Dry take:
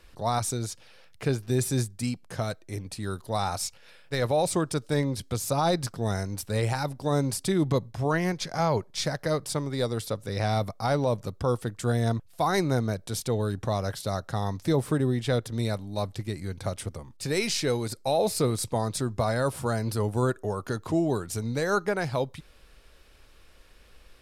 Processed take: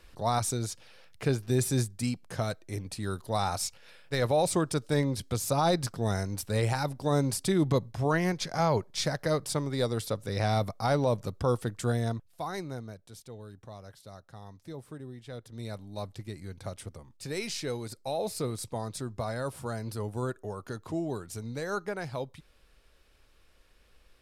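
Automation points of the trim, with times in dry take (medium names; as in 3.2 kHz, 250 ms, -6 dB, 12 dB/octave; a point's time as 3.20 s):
11.80 s -1 dB
12.41 s -10 dB
13.24 s -18 dB
15.25 s -18 dB
15.83 s -7.5 dB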